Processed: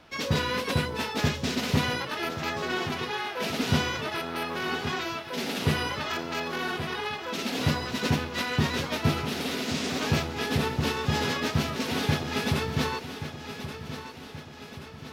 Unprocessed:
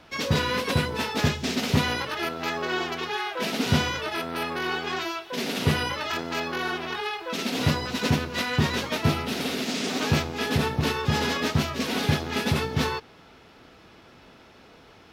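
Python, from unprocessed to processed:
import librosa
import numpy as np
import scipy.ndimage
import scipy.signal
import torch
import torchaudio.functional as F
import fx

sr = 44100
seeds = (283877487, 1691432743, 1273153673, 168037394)

y = fx.echo_feedback(x, sr, ms=1128, feedback_pct=53, wet_db=-11.0)
y = y * 10.0 ** (-2.5 / 20.0)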